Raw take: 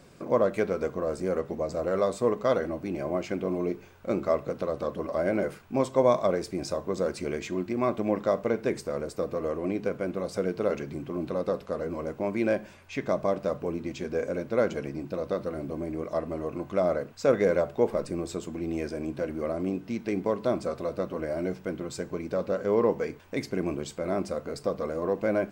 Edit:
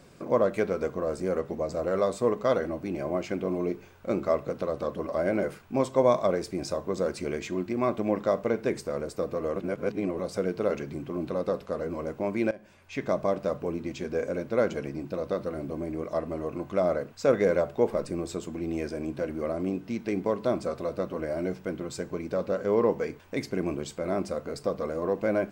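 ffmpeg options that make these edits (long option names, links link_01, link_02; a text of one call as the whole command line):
ffmpeg -i in.wav -filter_complex "[0:a]asplit=4[link_01][link_02][link_03][link_04];[link_01]atrim=end=9.562[link_05];[link_02]atrim=start=9.558:end=10.192,asetpts=PTS-STARTPTS,areverse[link_06];[link_03]atrim=start=10.188:end=12.51,asetpts=PTS-STARTPTS,afade=type=out:start_time=2.318:duration=0.004:curve=hsin:silence=0.0891251[link_07];[link_04]atrim=start=12.51,asetpts=PTS-STARTPTS,afade=type=in:duration=0.51:silence=0.0891251[link_08];[link_05][link_06]acrossfade=duration=0.004:curve1=hsin:curve2=hsin[link_09];[link_07][link_08]concat=n=2:v=0:a=1[link_10];[link_09][link_10]acrossfade=duration=0.004:curve1=hsin:curve2=hsin" out.wav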